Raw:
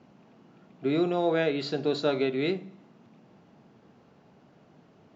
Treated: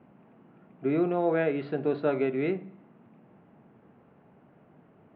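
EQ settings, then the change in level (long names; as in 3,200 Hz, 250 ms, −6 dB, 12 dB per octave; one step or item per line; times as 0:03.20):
low-pass filter 2,500 Hz 24 dB per octave
high-frequency loss of the air 95 metres
0.0 dB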